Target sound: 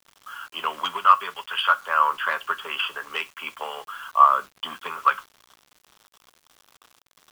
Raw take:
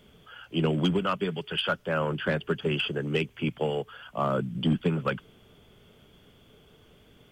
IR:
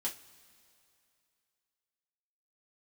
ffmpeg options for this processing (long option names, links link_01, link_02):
-filter_complex "[0:a]highpass=frequency=1100:width_type=q:width=7.2,asplit=2[link_01][link_02];[1:a]atrim=start_sample=2205,afade=type=out:start_time=0.19:duration=0.01,atrim=end_sample=8820[link_03];[link_02][link_03]afir=irnorm=-1:irlink=0,volume=-8dB[link_04];[link_01][link_04]amix=inputs=2:normalize=0,acrusher=bits=7:mix=0:aa=0.000001"